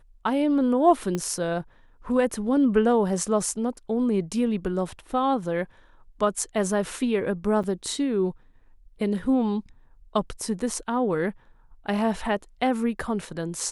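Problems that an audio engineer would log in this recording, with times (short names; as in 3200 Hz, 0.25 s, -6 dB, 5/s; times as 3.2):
1.15 pop -15 dBFS
7.63–7.64 gap 7.2 ms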